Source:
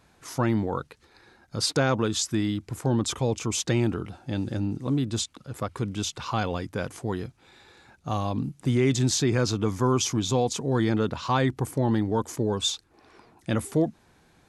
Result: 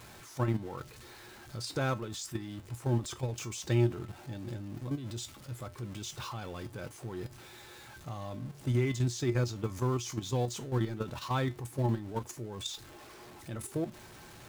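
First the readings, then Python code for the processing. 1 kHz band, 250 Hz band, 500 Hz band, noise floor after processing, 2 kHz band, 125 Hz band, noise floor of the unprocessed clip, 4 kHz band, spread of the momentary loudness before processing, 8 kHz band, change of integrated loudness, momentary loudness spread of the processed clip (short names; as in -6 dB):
-9.5 dB, -10.0 dB, -9.0 dB, -52 dBFS, -8.5 dB, -5.5 dB, -61 dBFS, -11.5 dB, 10 LU, -11.5 dB, -8.5 dB, 16 LU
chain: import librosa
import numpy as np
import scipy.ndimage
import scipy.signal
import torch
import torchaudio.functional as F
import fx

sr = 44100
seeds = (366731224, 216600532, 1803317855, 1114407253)

y = x + 0.5 * 10.0 ** (-33.0 / 20.0) * np.sign(x)
y = fx.level_steps(y, sr, step_db=11)
y = fx.comb_fb(y, sr, f0_hz=120.0, decay_s=0.2, harmonics='odd', damping=0.0, mix_pct=70)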